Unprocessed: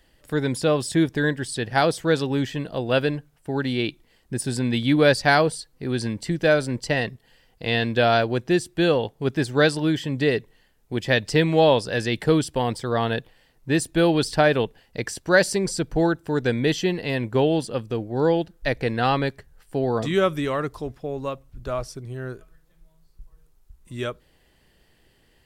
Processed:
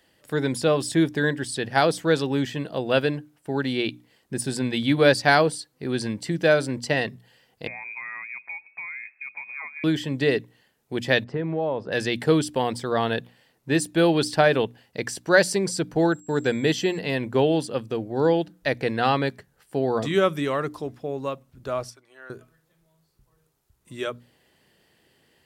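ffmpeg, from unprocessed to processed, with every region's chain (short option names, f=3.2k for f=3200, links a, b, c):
-filter_complex "[0:a]asettb=1/sr,asplit=3[a][b][c];[a]atrim=end=7.674[d];[b]atrim=start=7.67:end=9.84,asetpts=PTS-STARTPTS,afade=t=in:d=0.004:c=qsin,afade=t=out:st=2.166:d=0.004:c=qsin,acompressor=threshold=-33dB:ratio=8:attack=3.2:release=140:knee=1:detection=peak,lowpass=f=2.2k:t=q:w=0.5098,lowpass=f=2.2k:t=q:w=0.6013,lowpass=f=2.2k:t=q:w=0.9,lowpass=f=2.2k:t=q:w=2.563,afreqshift=-2600[e];[c]atrim=start=9.836[f];[d][e]acrossfade=d=0.004:c1=hsin:c2=qsin[g];[g][f]acrossfade=d=0.004:c1=qsin:c2=hsin,asettb=1/sr,asplit=3[h][i][j];[h]atrim=end=11.244[k];[i]atrim=start=11.24:end=11.92,asetpts=PTS-STARTPTS,afade=t=in:d=0.004:c=qsin,afade=t=out:st=0.676:d=0.004:c=qsin,lowpass=1.3k,acompressor=threshold=-23dB:ratio=4:attack=3.2:release=140:knee=1:detection=peak[l];[j]atrim=start=11.916[m];[k][l]acrossfade=d=0.004:c1=hsin:c2=qsin[n];[n][m]acrossfade=d=0.004:c1=qsin:c2=hsin,asettb=1/sr,asplit=3[o][p][q];[o]atrim=end=16.124[r];[p]atrim=start=16.12:end=16.99,asetpts=PTS-STARTPTS,afade=t=in:d=0.004:c=qsin,afade=t=out:st=0.866:d=0.004:c=qsin,agate=range=-35dB:threshold=-45dB:ratio=16:release=100:detection=peak,aeval=exprs='val(0)+0.00282*sin(2*PI*7600*n/s)':c=same[s];[q]atrim=start=16.986[t];[r][s]acrossfade=d=0.004:c1=hsin:c2=qsin[u];[u][t]acrossfade=d=0.004:c1=qsin:c2=hsin,asettb=1/sr,asplit=3[v][w][x];[v]atrim=end=21.904[y];[w]atrim=start=21.9:end=22.3,asetpts=PTS-STARTPTS,afade=t=in:d=0.004:c=qsin,afade=t=out:st=0.396:d=0.004:c=qsin,highpass=1k,highshelf=f=3k:g=-10.5,aecho=1:1:3.5:0.33,atrim=end_sample=17640[z];[x]atrim=start=22.296[aa];[y][z]acrossfade=d=0.004:c1=hsin:c2=qsin[ab];[ab][aa]acrossfade=d=0.004:c1=qsin:c2=hsin,highpass=120,bandreject=f=60:t=h:w=6,bandreject=f=120:t=h:w=6,bandreject=f=180:t=h:w=6,bandreject=f=240:t=h:w=6,bandreject=f=300:t=h:w=6"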